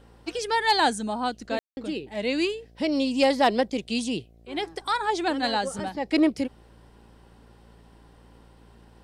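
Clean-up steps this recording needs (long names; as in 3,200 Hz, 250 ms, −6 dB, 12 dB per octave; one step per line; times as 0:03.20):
clipped peaks rebuilt −11 dBFS
hum removal 57.1 Hz, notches 13
ambience match 0:01.59–0:01.77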